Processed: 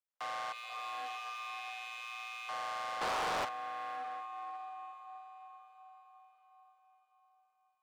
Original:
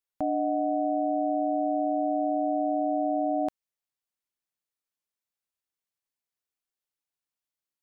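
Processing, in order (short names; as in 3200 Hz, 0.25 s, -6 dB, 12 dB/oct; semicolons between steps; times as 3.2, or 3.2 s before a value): median filter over 25 samples; 0.52–2.49 Chebyshev band-stop 100–1000 Hz, order 4; in parallel at +1 dB: limiter -28 dBFS, peak gain reduction 7.5 dB; on the sum: diffused feedback echo 0.58 s, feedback 48%, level -9.5 dB; overloaded stage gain 35.5 dB; frequency shift +460 Hz; on a send at -18 dB: reverb RT60 5.2 s, pre-delay 0.11 s; 3.01–3.45 on the sum: sample leveller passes 3; Doppler distortion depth 0.55 ms; gain -3 dB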